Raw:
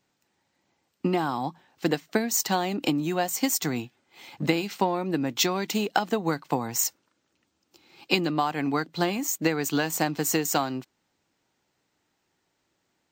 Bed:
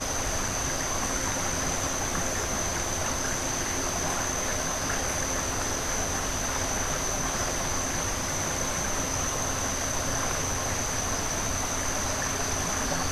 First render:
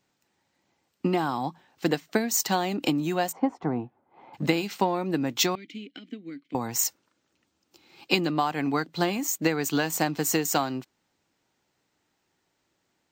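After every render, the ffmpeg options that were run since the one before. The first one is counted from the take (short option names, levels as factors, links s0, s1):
-filter_complex "[0:a]asplit=3[s0][s1][s2];[s0]afade=t=out:st=3.31:d=0.02[s3];[s1]lowpass=f=890:t=q:w=2,afade=t=in:st=3.31:d=0.02,afade=t=out:st=4.33:d=0.02[s4];[s2]afade=t=in:st=4.33:d=0.02[s5];[s3][s4][s5]amix=inputs=3:normalize=0,asettb=1/sr,asplit=3[s6][s7][s8];[s6]atrim=end=5.554[s9];[s7]atrim=start=5.55:end=6.55,asetpts=PTS-STARTPTS,afade=t=in:d=0.004:c=qsin,afade=t=out:st=0.996:d=0.004:c=qsin,asplit=3[s10][s11][s12];[s10]bandpass=f=270:t=q:w=8,volume=1[s13];[s11]bandpass=f=2290:t=q:w=8,volume=0.501[s14];[s12]bandpass=f=3010:t=q:w=8,volume=0.355[s15];[s13][s14][s15]amix=inputs=3:normalize=0[s16];[s8]atrim=start=6.546[s17];[s9][s16]acrossfade=d=0.004:c1=hsin:c2=qsin[s18];[s18][s17]acrossfade=d=0.004:c1=qsin:c2=hsin"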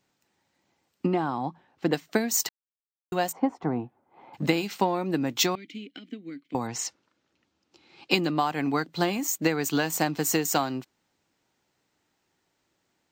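-filter_complex "[0:a]asettb=1/sr,asplit=3[s0][s1][s2];[s0]atrim=end=1.064[s3];[s1]atrim=start=1.06:end=1.93,asetpts=PTS-STARTPTS,afade=t=in:d=0.004:c=qsin,afade=t=out:st=0.866:d=0.004:c=qsin,lowpass=f=1600:p=1[s4];[s2]atrim=start=1.926[s5];[s3][s4]acrossfade=d=0.004:c1=hsin:c2=qsin[s6];[s6][s5]acrossfade=d=0.004:c1=qsin:c2=hsin,asettb=1/sr,asplit=3[s7][s8][s9];[s7]atrim=end=6.674[s10];[s8]atrim=start=6.67:end=8.11,asetpts=PTS-STARTPTS,afade=t=in:d=0.004:c=qsin,afade=t=out:st=1.436:d=0.004:c=qsin,lowpass=5500[s11];[s9]atrim=start=8.106[s12];[s10][s11]acrossfade=d=0.004:c1=hsin:c2=qsin[s13];[s13][s12]acrossfade=d=0.004:c1=qsin:c2=hsin,asplit=3[s14][s15][s16];[s14]atrim=end=2.49,asetpts=PTS-STARTPTS,afade=t=out:st=2.486:d=0.004:c=hsin[s17];[s15]atrim=start=2.49:end=3.12,asetpts=PTS-STARTPTS,volume=0[s18];[s16]atrim=start=3.12,asetpts=PTS-STARTPTS,afade=t=in:d=0.004:c=hsin[s19];[s17][s18][s19]concat=n=3:v=0:a=1"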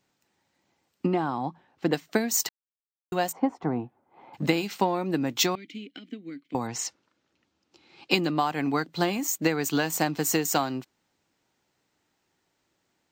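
-af anull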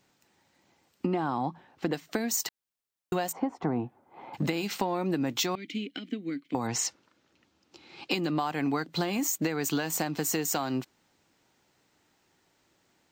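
-filter_complex "[0:a]acompressor=threshold=0.0355:ratio=6,asplit=2[s0][s1];[s1]alimiter=level_in=1.5:limit=0.0631:level=0:latency=1,volume=0.668,volume=0.841[s2];[s0][s2]amix=inputs=2:normalize=0"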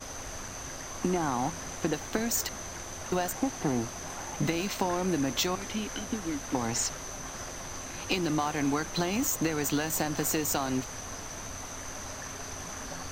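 -filter_complex "[1:a]volume=0.282[s0];[0:a][s0]amix=inputs=2:normalize=0"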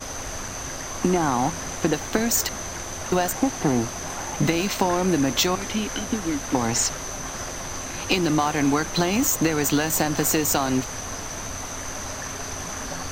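-af "volume=2.37"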